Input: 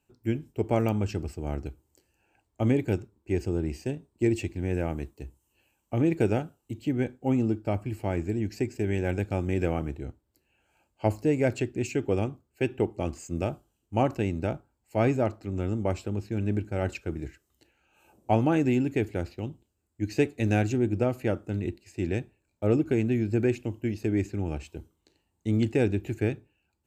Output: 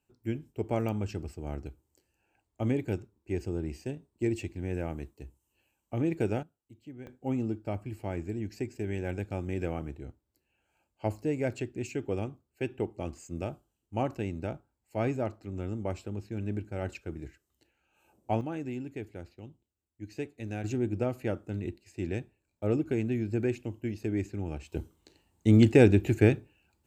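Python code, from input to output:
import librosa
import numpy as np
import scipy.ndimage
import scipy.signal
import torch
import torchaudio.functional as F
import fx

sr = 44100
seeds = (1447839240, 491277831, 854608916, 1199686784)

y = fx.gain(x, sr, db=fx.steps((0.0, -5.0), (6.43, -18.0), (7.07, -6.0), (18.41, -12.5), (20.64, -4.5), (24.72, 5.5)))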